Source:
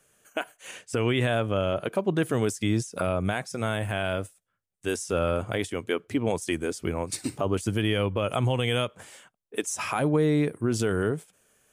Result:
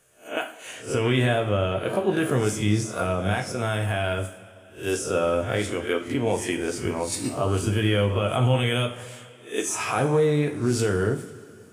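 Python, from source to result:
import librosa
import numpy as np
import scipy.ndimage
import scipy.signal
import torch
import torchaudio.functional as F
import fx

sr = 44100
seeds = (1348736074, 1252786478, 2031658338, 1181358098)

y = fx.spec_swells(x, sr, rise_s=0.34)
y = fx.rev_double_slope(y, sr, seeds[0], early_s=0.38, late_s=2.7, knee_db=-18, drr_db=3.0)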